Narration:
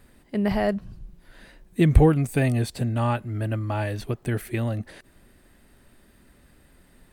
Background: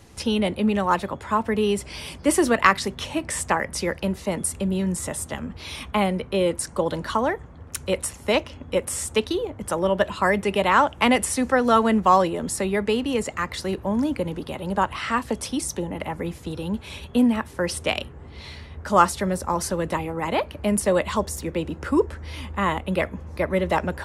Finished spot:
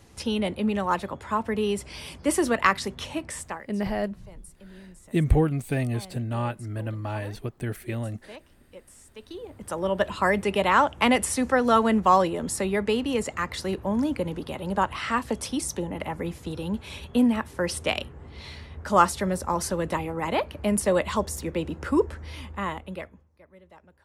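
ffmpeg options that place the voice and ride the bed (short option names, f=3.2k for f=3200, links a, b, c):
-filter_complex "[0:a]adelay=3350,volume=-4.5dB[a];[1:a]volume=17.5dB,afade=t=out:st=3.11:d=0.58:silence=0.105925,afade=t=in:st=9.18:d=0.96:silence=0.0841395,afade=t=out:st=22.09:d=1.2:silence=0.0398107[b];[a][b]amix=inputs=2:normalize=0"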